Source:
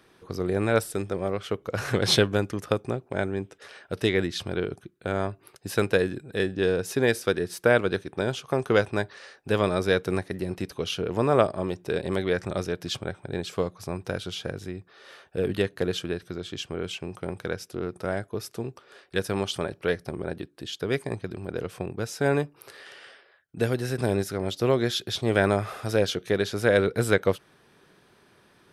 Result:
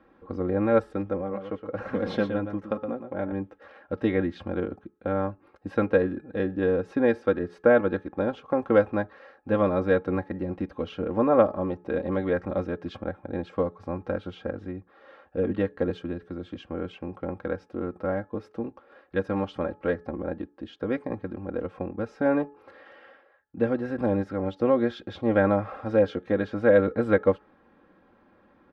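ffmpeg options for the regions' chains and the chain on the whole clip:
-filter_complex "[0:a]asettb=1/sr,asplit=3[a][b][c];[a]atrim=end=1.214[d];[b]atrim=start=1.21:end=3.32,asetpts=PTS-STARTPTS,afade=t=in:d=0.004:c=qsin,afade=t=out:st=2.106:d=0.004:c=qsin,aecho=1:1:117:0.376,atrim=end_sample=93051,flanger=delay=4.1:depth=2.8:regen=-46:speed=1.2:shape=sinusoidal[e];[c]atrim=start=3.316[f];[d][e]acrossfade=d=0.004:c1=hsin:c2=qsin[g];[g][f]acrossfade=d=0.004:c1=qsin:c2=hsin,asettb=1/sr,asplit=3[h][i][j];[h]atrim=end=15.904[k];[i]atrim=start=15.9:end=16.56,asetpts=PTS-STARTPTS,afade=t=in:d=0.004:c=qsin,afade=t=out:st=0.656:d=0.004:c=qsin,acrossover=split=370|3000[l][m][n];[m]acompressor=threshold=-46dB:ratio=1.5:attack=3.2:release=140:knee=2.83:detection=peak[o];[l][o][n]amix=inputs=3:normalize=0,highshelf=f=10k:g=9[p];[j]atrim=start=16.556[q];[k][p]acrossfade=d=0.004:c1=hsin:c2=qsin[r];[r][q]acrossfade=d=0.004:c1=qsin:c2=hsin,lowpass=1.3k,aecho=1:1:3.7:0.79,bandreject=f=426.7:t=h:w=4,bandreject=f=853.4:t=h:w=4,bandreject=f=1.2801k:t=h:w=4,bandreject=f=1.7068k:t=h:w=4"

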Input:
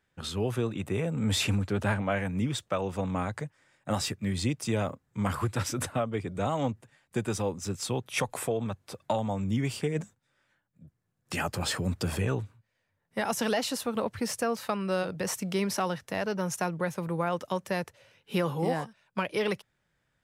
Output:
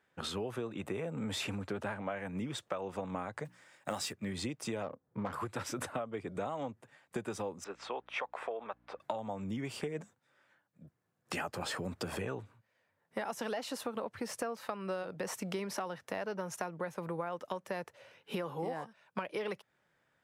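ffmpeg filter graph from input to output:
-filter_complex "[0:a]asettb=1/sr,asplit=3[a][b][c];[a]atrim=end=3.454[d];[b]atrim=start=3.45:end=4.13,asetpts=PTS-STARTPTS,afade=t=in:d=0.004:c=qsin,afade=t=out:st=0.676:d=0.004:c=qsin,highshelf=f=3k:g=9.5,bandreject=f=60:t=h:w=6,bandreject=f=120:t=h:w=6,bandreject=f=180:t=h:w=6,bandreject=f=240:t=h:w=6,bandreject=f=300:t=h:w=6,bandreject=f=360:t=h:w=6,acrusher=bits=6:mode=log:mix=0:aa=0.000001[e];[c]atrim=start=4.126[f];[d][e]acrossfade=d=0.004:c1=hsin:c2=qsin[g];[g][f]acrossfade=d=0.004:c1=qsin:c2=hsin,asettb=1/sr,asplit=3[h][i][j];[h]atrim=end=4.834[k];[i]atrim=start=4.83:end=5.33,asetpts=PTS-STARTPTS,afade=t=in:d=0.004:c=qsin,afade=t=out:st=0.496:d=0.004:c=qsin,equalizer=f=490:t=o:w=0.33:g=4.5,adynamicsmooth=sensitivity=3.5:basefreq=990[l];[j]atrim=start=5.326[m];[k][l]acrossfade=d=0.004:c1=hsin:c2=qsin[n];[n][m]acrossfade=d=0.004:c1=qsin:c2=hsin,asettb=1/sr,asplit=3[o][p][q];[o]atrim=end=7.644[r];[p]atrim=start=7.64:end=9,asetpts=PTS-STARTPTS,afade=t=in:d=0.004:c=qsin,afade=t=out:st=1.356:d=0.004:c=qsin,highpass=590,lowpass=2.5k,aeval=exprs='val(0)+0.000794*(sin(2*PI*60*n/s)+sin(2*PI*2*60*n/s)/2+sin(2*PI*3*60*n/s)/3+sin(2*PI*4*60*n/s)/4+sin(2*PI*5*60*n/s)/5)':c=same[s];[q]atrim=start=8.996[t];[r][s]acrossfade=d=0.004:c1=hsin:c2=qsin[u];[u][t]acrossfade=d=0.004:c1=qsin:c2=hsin,highpass=f=490:p=1,highshelf=f=2.1k:g=-10.5,acompressor=threshold=-42dB:ratio=6,volume=7dB"

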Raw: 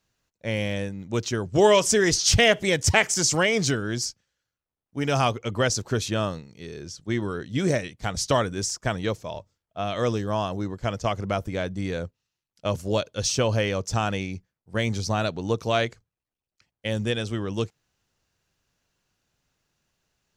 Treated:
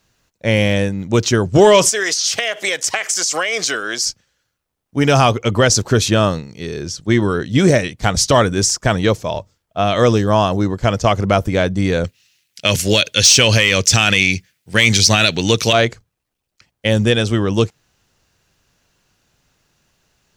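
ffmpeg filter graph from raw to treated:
-filter_complex "[0:a]asettb=1/sr,asplit=3[a][b][c];[a]atrim=end=1.894[d];[b]atrim=start=1.89:end=4.07,asetpts=PTS-STARTPTS,afade=t=in:d=0.004:c=qsin,afade=t=out:st=2.176:d=0.004:c=qsin,highpass=650,bandreject=f=900:w=7.3,acompressor=threshold=-26dB:ratio=16:attack=3.2:release=140:knee=1:detection=peak[e];[c]atrim=start=4.066[f];[d][e]acrossfade=d=0.004:c1=hsin:c2=qsin[g];[g][f]acrossfade=d=0.004:c1=qsin:c2=hsin,asettb=1/sr,asplit=3[h][i][j];[h]atrim=end=12.044[k];[i]atrim=start=12.04:end=15.73,asetpts=PTS-STARTPTS,afade=t=in:d=0.004:c=qsin,afade=t=out:st=3.686:d=0.004:c=qsin,highpass=66,highshelf=f=1.5k:t=q:w=1.5:g=12[l];[j]atrim=start=15.726[m];[k][l]acrossfade=d=0.004:c1=hsin:c2=qsin[n];[n][m]acrossfade=d=0.004:c1=qsin:c2=hsin,acontrast=47,alimiter=level_in=7.5dB:limit=-1dB:release=50:level=0:latency=1,volume=-1dB"

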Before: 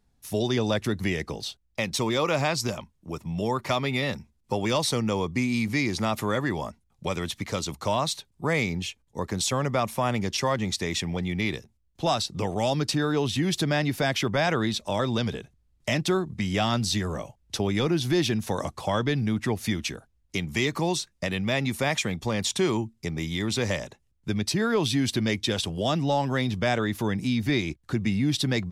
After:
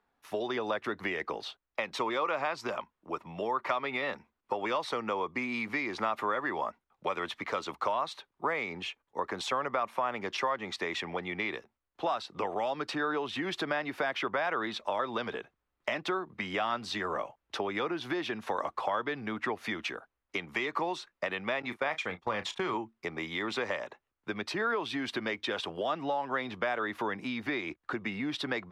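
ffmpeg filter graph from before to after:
-filter_complex "[0:a]asettb=1/sr,asplit=3[a][b][c];[a]atrim=end=21.624[d];[b]atrim=start=21.62:end=22.74,asetpts=PTS-STARTPTS,afade=t=in:d=0.004:c=qsin,afade=t=out:st=1.116:d=0.004:c=qsin,agate=range=-20dB:threshold=-30dB:ratio=16:release=100:detection=peak,asubboost=boost=10.5:cutoff=140,asplit=2[e][f];[f]adelay=33,volume=-13.5dB[g];[e][g]amix=inputs=2:normalize=0,atrim=end_sample=49392[h];[c]atrim=start=22.736[i];[d][h]acrossfade=d=0.004:c1=hsin:c2=qsin[j];[j][i]acrossfade=d=0.004:c1=qsin:c2=hsin,acrossover=split=300 3400:gain=0.0891 1 0.112[k][l][m];[k][l][m]amix=inputs=3:normalize=0,acompressor=threshold=-31dB:ratio=6,equalizer=f=1.2k:t=o:w=1.1:g=7.5"

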